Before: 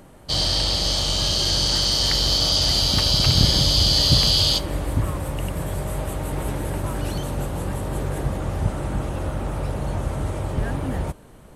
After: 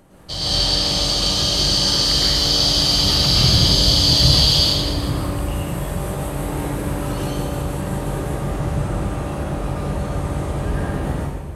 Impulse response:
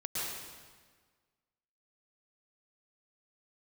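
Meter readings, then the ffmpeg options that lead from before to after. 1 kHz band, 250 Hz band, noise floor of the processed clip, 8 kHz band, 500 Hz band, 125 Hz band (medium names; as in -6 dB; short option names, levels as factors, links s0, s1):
+3.5 dB, +4.5 dB, -27 dBFS, +3.0 dB, +3.5 dB, +2.5 dB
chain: -filter_complex "[1:a]atrim=start_sample=2205[s0];[0:a][s0]afir=irnorm=-1:irlink=0,volume=0.891"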